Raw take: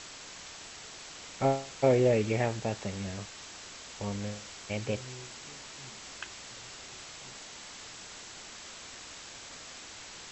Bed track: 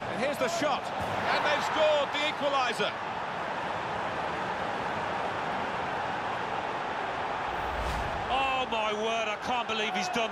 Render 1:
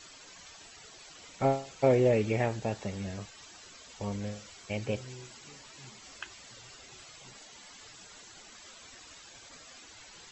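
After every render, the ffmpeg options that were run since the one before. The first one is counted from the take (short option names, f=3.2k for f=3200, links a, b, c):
-af "afftdn=nr=12:nf=-47"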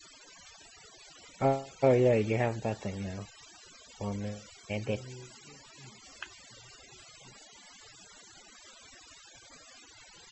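-af "afftfilt=real='re*gte(hypot(re,im),0.00355)':imag='im*gte(hypot(re,im),0.00355)':win_size=1024:overlap=0.75"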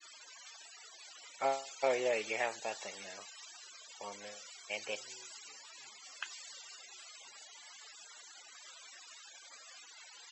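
-af "highpass=780,adynamicequalizer=threshold=0.00251:dfrequency=3100:dqfactor=0.7:tfrequency=3100:tqfactor=0.7:attack=5:release=100:ratio=0.375:range=3:mode=boostabove:tftype=highshelf"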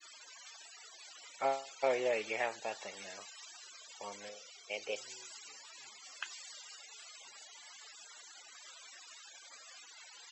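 -filter_complex "[0:a]asettb=1/sr,asplit=3[a][b][c];[a]atrim=end=1.414[d];[b]atrim=start=1.41:end=2.97,asetpts=PTS-STARTPTS,afade=t=in:d=0.004:c=qsin,afade=t=out:st=1.556:d=0.004:c=qsin,highshelf=f=6.7k:g=-8.5[e];[c]atrim=start=2.966[f];[d][e]acrossfade=d=0.004:c1=hsin:c2=qsin[g];[g][f]acrossfade=d=0.004:c1=qsin:c2=hsin,asettb=1/sr,asplit=3[h][i][j];[h]atrim=end=4.294[k];[i]atrim=start=4.29:end=4.96,asetpts=PTS-STARTPTS,afade=t=in:d=0.004:c=qsin,afade=t=out:st=0.666:d=0.004:c=qsin,highpass=130,equalizer=f=220:t=q:w=4:g=-3,equalizer=f=450:t=q:w=4:g=7,equalizer=f=1k:t=q:w=4:g=-8,equalizer=f=1.7k:t=q:w=4:g=-10,equalizer=f=4.3k:t=q:w=4:g=-3,lowpass=f=6.5k:w=0.5412,lowpass=f=6.5k:w=1.3066[l];[j]atrim=start=4.956[m];[k][l]acrossfade=d=0.004:c1=hsin:c2=qsin[n];[n][m]acrossfade=d=0.004:c1=qsin:c2=hsin,asettb=1/sr,asplit=3[o][p][q];[o]atrim=end=6.434[r];[p]atrim=start=6.43:end=7.02,asetpts=PTS-STARTPTS,afade=t=in:d=0.004:c=qsin,afade=t=out:st=0.586:d=0.004:c=qsin,afreqshift=55[s];[q]atrim=start=7.016[t];[r][s]acrossfade=d=0.004:c1=hsin:c2=qsin[u];[u][t]acrossfade=d=0.004:c1=qsin:c2=hsin"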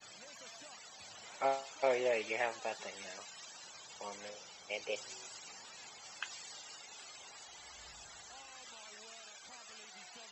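-filter_complex "[1:a]volume=-29.5dB[a];[0:a][a]amix=inputs=2:normalize=0"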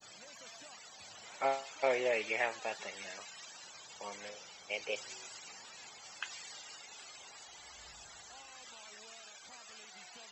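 -af "adynamicequalizer=threshold=0.002:dfrequency=2100:dqfactor=1.2:tfrequency=2100:tqfactor=1.2:attack=5:release=100:ratio=0.375:range=2:mode=boostabove:tftype=bell"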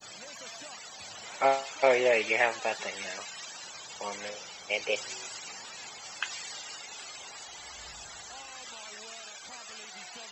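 -af "volume=8dB"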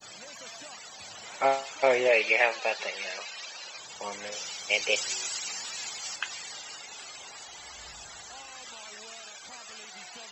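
-filter_complex "[0:a]asettb=1/sr,asplit=3[a][b][c];[a]atrim=end=2.084[d];[b]atrim=start=2.08:end=3.78,asetpts=PTS-STARTPTS,afade=t=in:d=0.004:c=qsin,afade=t=out:st=1.696:d=0.004:c=qsin,highpass=250,equalizer=f=280:t=q:w=4:g=-5,equalizer=f=540:t=q:w=4:g=4,equalizer=f=2.5k:t=q:w=4:g=6,equalizer=f=4.4k:t=q:w=4:g=5,lowpass=f=6.8k:w=0.5412,lowpass=f=6.8k:w=1.3066[e];[c]atrim=start=3.776[f];[d][e]acrossfade=d=0.004:c1=hsin:c2=qsin[g];[g][f]acrossfade=d=0.004:c1=qsin:c2=hsin,asettb=1/sr,asplit=3[h][i][j];[h]atrim=end=4.324[k];[i]atrim=start=4.32:end=6.16,asetpts=PTS-STARTPTS,afade=t=in:d=0.004:c=qsin,afade=t=out:st=1.836:d=0.004:c=qsin,highshelf=f=2.2k:g=9.5[l];[j]atrim=start=6.156[m];[k][l]acrossfade=d=0.004:c1=hsin:c2=qsin[n];[n][m]acrossfade=d=0.004:c1=qsin:c2=hsin"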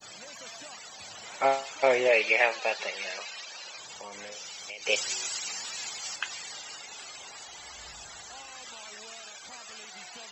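-filter_complex "[0:a]asettb=1/sr,asplit=3[a][b][c];[a]atrim=end=3.404[d];[b]atrim=start=3.4:end=4.86,asetpts=PTS-STARTPTS,afade=t=in:d=0.004:c=qsin,afade=t=out:st=1.456:d=0.004:c=qsin,acompressor=threshold=-38dB:ratio=6:attack=3.2:release=140:knee=1:detection=peak[e];[c]atrim=start=4.856[f];[d][e]acrossfade=d=0.004:c1=hsin:c2=qsin[g];[g][f]acrossfade=d=0.004:c1=qsin:c2=hsin"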